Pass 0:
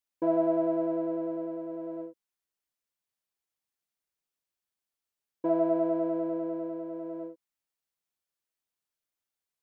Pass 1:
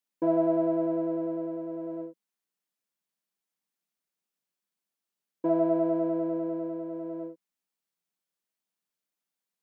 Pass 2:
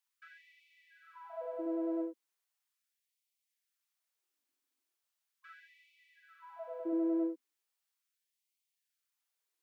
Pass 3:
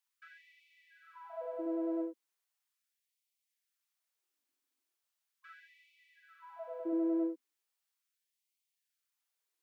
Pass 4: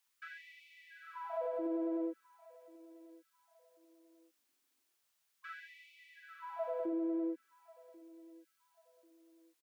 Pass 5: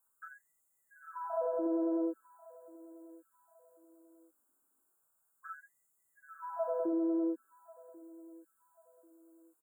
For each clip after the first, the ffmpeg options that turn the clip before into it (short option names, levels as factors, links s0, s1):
-af "lowshelf=f=130:t=q:w=3:g=-10.5"
-af "asubboost=boost=10.5:cutoff=170,afftfilt=real='re*gte(b*sr/1024,230*pow(2000/230,0.5+0.5*sin(2*PI*0.38*pts/sr)))':imag='im*gte(b*sr/1024,230*pow(2000/230,0.5+0.5*sin(2*PI*0.38*pts/sr)))':win_size=1024:overlap=0.75,volume=1.26"
-af anull
-af "alimiter=level_in=4.47:limit=0.0631:level=0:latency=1:release=156,volume=0.224,aecho=1:1:1090|2180:0.0891|0.0294,volume=2.24"
-af "asuperstop=centerf=3400:order=20:qfactor=0.62,volume=1.58"